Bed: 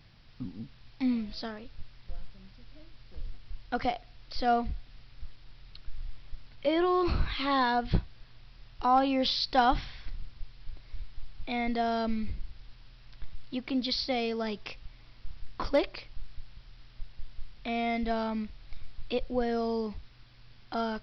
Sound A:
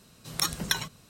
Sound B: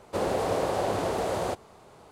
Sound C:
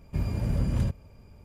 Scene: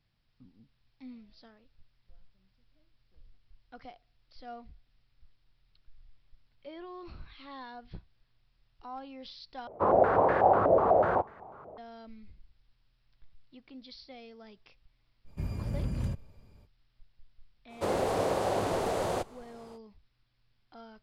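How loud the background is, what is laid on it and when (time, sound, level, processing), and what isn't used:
bed -18.5 dB
9.67 s: replace with B -1 dB + step-sequenced low-pass 8.1 Hz 610–1700 Hz
15.24 s: add C -6.5 dB, fades 0.05 s
17.68 s: add B -2 dB, fades 0.05 s
not used: A

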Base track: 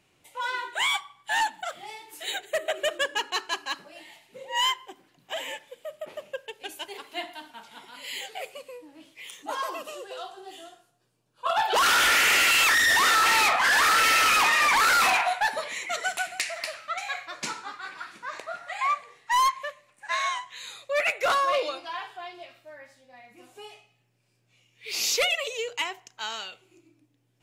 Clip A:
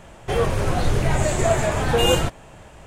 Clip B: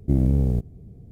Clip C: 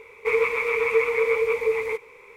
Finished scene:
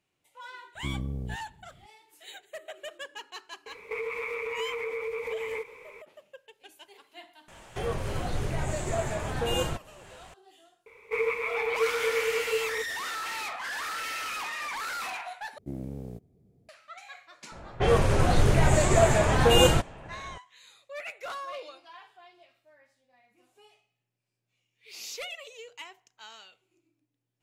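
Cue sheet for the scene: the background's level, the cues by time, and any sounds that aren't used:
base track -14 dB
0.75 s: add B -14 dB
3.66 s: add C -1 dB + compression 10:1, threshold -29 dBFS
7.48 s: add A -10.5 dB + tape noise reduction on one side only encoder only
10.86 s: add C -6.5 dB
15.58 s: replace with B -9 dB + high-pass 370 Hz 6 dB/octave
17.52 s: add A -1 dB + level-controlled noise filter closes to 1.6 kHz, open at -15.5 dBFS

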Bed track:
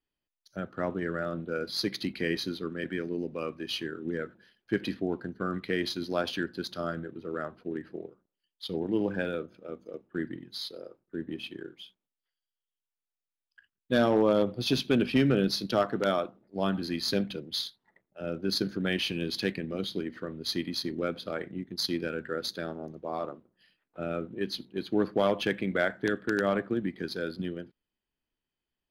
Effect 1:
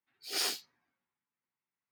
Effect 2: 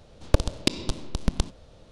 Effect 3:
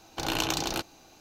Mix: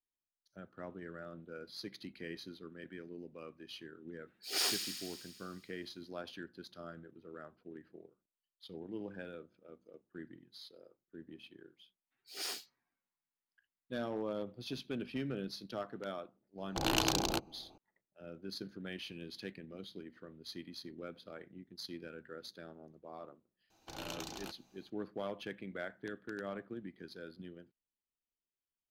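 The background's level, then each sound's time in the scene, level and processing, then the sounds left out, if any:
bed track -15 dB
4.20 s: add 1 -1 dB + feedback echo behind a high-pass 79 ms, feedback 74%, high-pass 2.1 kHz, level -7 dB
12.04 s: add 1 -8 dB
16.58 s: add 3 -1.5 dB + local Wiener filter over 25 samples
23.70 s: add 3 -16 dB
not used: 2

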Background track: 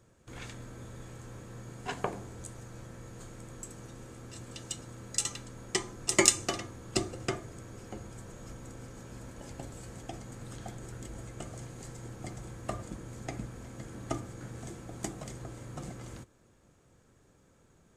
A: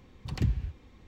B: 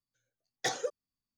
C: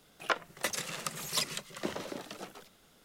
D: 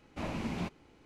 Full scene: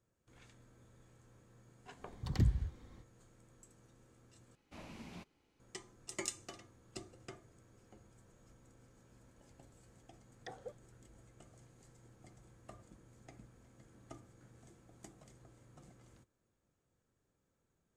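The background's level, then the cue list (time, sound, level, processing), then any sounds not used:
background track -18 dB
1.98 s: add A -3 dB, fades 0.05 s + peaking EQ 2.6 kHz -11.5 dB 0.29 oct
4.55 s: replace with D -15.5 dB + treble shelf 3.2 kHz +8 dB
9.82 s: add B -14 dB + low-pass that closes with the level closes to 1 kHz, closed at -33.5 dBFS
not used: C

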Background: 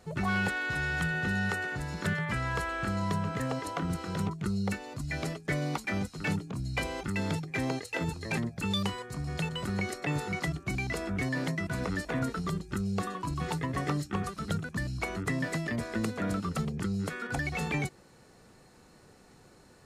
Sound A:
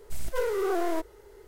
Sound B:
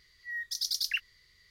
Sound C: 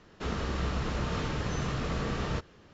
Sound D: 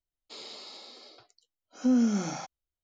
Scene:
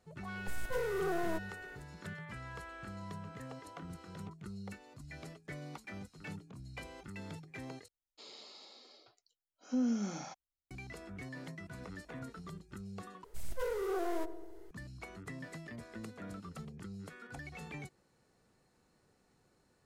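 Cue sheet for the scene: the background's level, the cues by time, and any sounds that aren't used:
background -14.5 dB
0.37 s: add A -7.5 dB
7.88 s: replace with D -8.5 dB
13.24 s: replace with A -8.5 dB + filtered feedback delay 90 ms, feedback 76%, low-pass 850 Hz, level -11 dB
not used: B, C

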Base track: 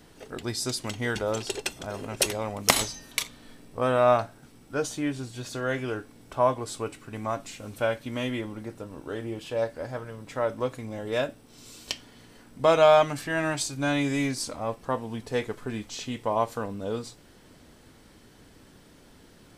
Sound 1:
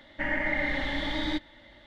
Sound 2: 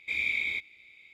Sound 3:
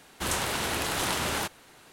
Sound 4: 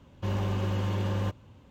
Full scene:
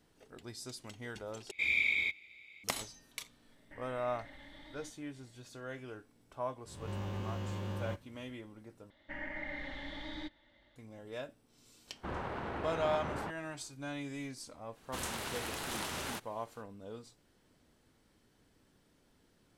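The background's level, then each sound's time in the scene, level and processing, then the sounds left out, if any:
base track -15.5 dB
1.51 s: replace with 2 -1 dB
3.52 s: add 1 -17.5 dB + compression, threshold -32 dBFS
6.65 s: add 4 -11 dB + reverse spectral sustain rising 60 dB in 0.74 s
8.90 s: replace with 1 -13.5 dB
11.83 s: add 3 -6.5 dB, fades 0.10 s + low-pass 1.3 kHz
14.72 s: add 3 -10.5 dB, fades 0.05 s

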